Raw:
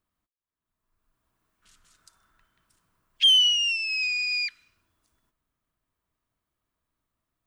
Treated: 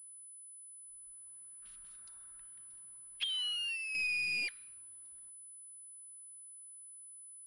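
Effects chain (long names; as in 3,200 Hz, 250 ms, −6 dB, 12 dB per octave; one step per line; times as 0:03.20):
soft clipping −24 dBFS, distortion −8 dB
0:03.24–0:03.95: three-way crossover with the lows and the highs turned down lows −24 dB, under 500 Hz, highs −13 dB, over 2,700 Hz
switching amplifier with a slow clock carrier 10,000 Hz
level −4 dB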